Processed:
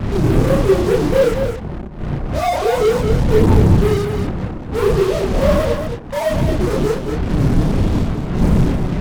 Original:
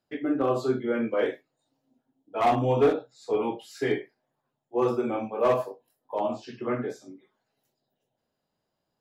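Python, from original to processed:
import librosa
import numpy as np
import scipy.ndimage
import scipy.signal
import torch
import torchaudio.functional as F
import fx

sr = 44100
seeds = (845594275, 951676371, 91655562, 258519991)

p1 = fx.sine_speech(x, sr)
p2 = fx.dmg_wind(p1, sr, seeds[0], corner_hz=210.0, level_db=-30.0)
p3 = scipy.ndimage.gaussian_filter1d(p2, 7.6, mode='constant')
p4 = fx.low_shelf(p3, sr, hz=240.0, db=3.5)
p5 = fx.fuzz(p4, sr, gain_db=48.0, gate_db=-42.0)
p6 = p4 + (p5 * 10.0 ** (-10.0 / 20.0))
p7 = fx.chorus_voices(p6, sr, voices=2, hz=0.7, base_ms=30, depth_ms=3.9, mix_pct=55)
p8 = p7 + fx.echo_single(p7, sr, ms=221, db=-7.0, dry=0)
y = p8 * 10.0 ** (6.5 / 20.0)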